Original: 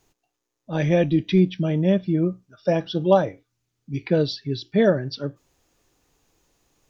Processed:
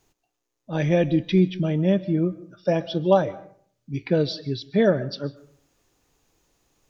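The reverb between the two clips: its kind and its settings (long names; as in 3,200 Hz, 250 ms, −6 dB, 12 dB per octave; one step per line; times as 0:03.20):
comb and all-pass reverb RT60 0.55 s, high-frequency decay 0.55×, pre-delay 95 ms, DRR 18.5 dB
level −1 dB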